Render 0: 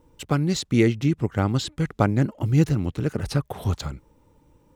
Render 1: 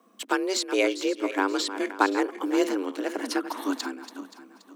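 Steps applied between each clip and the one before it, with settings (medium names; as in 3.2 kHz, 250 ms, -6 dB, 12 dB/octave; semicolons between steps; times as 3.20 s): backward echo that repeats 263 ms, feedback 53%, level -11.5 dB; resonant low shelf 600 Hz -6.5 dB, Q 1.5; frequency shift +190 Hz; trim +1.5 dB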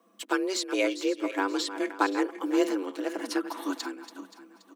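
comb 6 ms, depth 50%; trim -4 dB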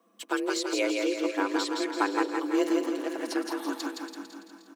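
feedback delay 167 ms, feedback 48%, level -3.5 dB; trim -2 dB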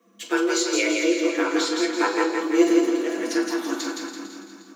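reverberation RT60 0.45 s, pre-delay 3 ms, DRR 1.5 dB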